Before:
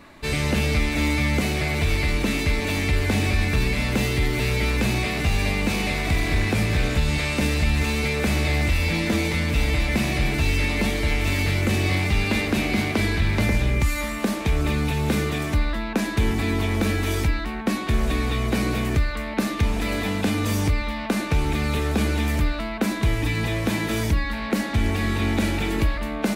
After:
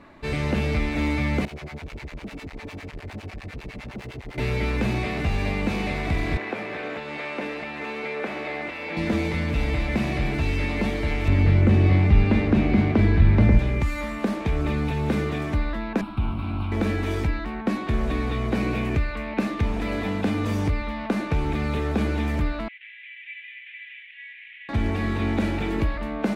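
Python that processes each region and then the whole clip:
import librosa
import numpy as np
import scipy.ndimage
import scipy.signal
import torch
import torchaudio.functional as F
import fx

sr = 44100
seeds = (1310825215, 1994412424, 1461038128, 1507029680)

y = fx.chain(x, sr, fx.overload_stage(gain_db=28.5),
    fx.harmonic_tremolo(hz=9.9, depth_pct=100, crossover_hz=630.0), at=(1.45, 4.38))
y = fx.chain(y, sr, fx.highpass(hz=180.0, slope=12),
    fx.bass_treble(bass_db=-15, treble_db=-12), at=(6.37, 8.97))
y = fx.chain(y, sr, fx.lowpass(hz=2900.0, slope=6),
    fx.low_shelf(hz=250.0, db=9.5), at=(11.28, 13.59))
y = fx.chain(y, sr, fx.lower_of_two(delay_ms=0.74),
    fx.high_shelf(hz=2900.0, db=-8.5),
    fx.fixed_phaser(hz=1800.0, stages=6), at=(16.01, 16.72))
y = fx.chain(y, sr, fx.peak_eq(hz=2500.0, db=6.5, octaves=0.3),
    fx.notch(hz=1300.0, q=26.0), at=(18.6, 19.47))
y = fx.chain(y, sr, fx.cvsd(bps=16000),
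    fx.steep_highpass(hz=1900.0, slope=72), at=(22.68, 24.69))
y = fx.lowpass(y, sr, hz=1600.0, slope=6)
y = fx.low_shelf(y, sr, hz=120.0, db=-3.5)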